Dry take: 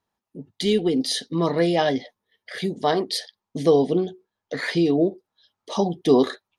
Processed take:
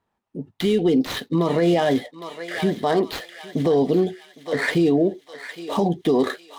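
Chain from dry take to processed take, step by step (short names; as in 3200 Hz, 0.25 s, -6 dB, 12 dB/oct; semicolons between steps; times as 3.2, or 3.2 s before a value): median filter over 9 samples; high shelf 10000 Hz -6.5 dB; on a send: thinning echo 0.809 s, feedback 50%, high-pass 1200 Hz, level -10.5 dB; on the sum: limiter -17 dBFS, peak gain reduction 11 dB; gain +6 dB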